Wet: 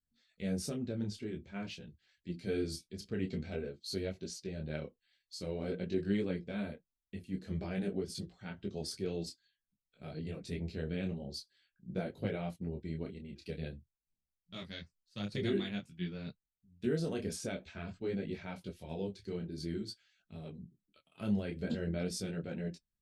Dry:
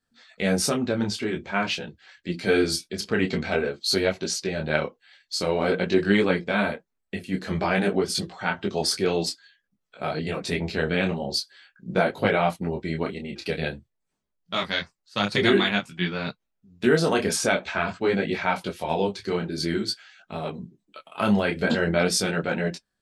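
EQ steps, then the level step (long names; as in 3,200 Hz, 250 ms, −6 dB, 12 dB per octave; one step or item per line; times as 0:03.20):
guitar amp tone stack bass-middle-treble 10-0-1
dynamic equaliser 550 Hz, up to +7 dB, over −58 dBFS, Q 0.72
+3.5 dB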